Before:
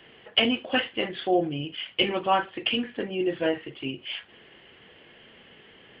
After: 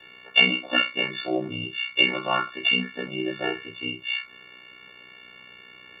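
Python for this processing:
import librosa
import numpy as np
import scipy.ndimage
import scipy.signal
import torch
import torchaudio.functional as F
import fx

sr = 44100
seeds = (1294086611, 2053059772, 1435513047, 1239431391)

y = fx.freq_snap(x, sr, grid_st=4)
y = fx.room_flutter(y, sr, wall_m=4.8, rt60_s=0.23)
y = y * np.sin(2.0 * np.pi * 31.0 * np.arange(len(y)) / sr)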